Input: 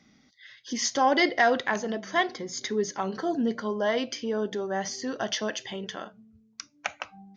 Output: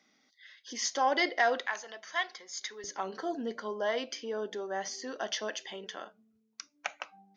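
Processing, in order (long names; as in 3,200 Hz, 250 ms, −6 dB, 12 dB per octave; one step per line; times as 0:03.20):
high-pass filter 400 Hz 12 dB per octave, from 0:01.66 980 Hz, from 0:02.84 340 Hz
level −4.5 dB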